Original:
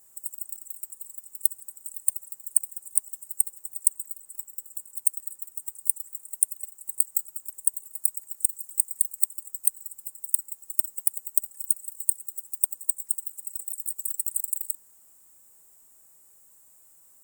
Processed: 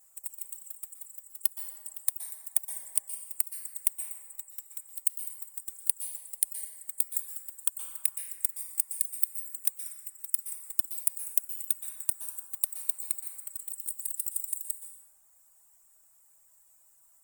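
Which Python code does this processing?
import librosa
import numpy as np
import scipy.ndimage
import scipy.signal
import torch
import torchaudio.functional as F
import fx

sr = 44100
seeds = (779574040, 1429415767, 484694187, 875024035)

y = fx.env_flanger(x, sr, rest_ms=6.7, full_db=-24.0)
y = fx.low_shelf(y, sr, hz=97.0, db=8.0)
y = fx.dereverb_blind(y, sr, rt60_s=1.0)
y = fx.curve_eq(y, sr, hz=(120.0, 390.0, 610.0), db=(0, -14, 7))
y = fx.rev_plate(y, sr, seeds[0], rt60_s=1.9, hf_ratio=0.45, predelay_ms=110, drr_db=5.5)
y = y * librosa.db_to_amplitude(-7.0)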